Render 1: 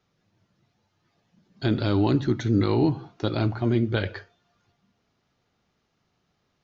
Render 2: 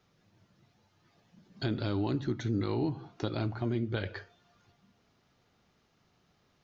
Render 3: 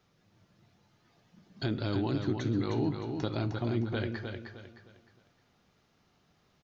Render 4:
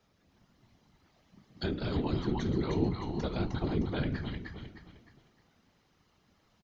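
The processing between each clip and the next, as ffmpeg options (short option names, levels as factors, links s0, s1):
-af "acompressor=threshold=0.01:ratio=2,volume=1.33"
-af "aecho=1:1:308|616|924|1232:0.501|0.17|0.0579|0.0197"
-af "aecho=1:1:309:0.473,afftfilt=real='hypot(re,im)*cos(2*PI*random(0))':imag='hypot(re,im)*sin(2*PI*random(1))':win_size=512:overlap=0.75,volume=1.78"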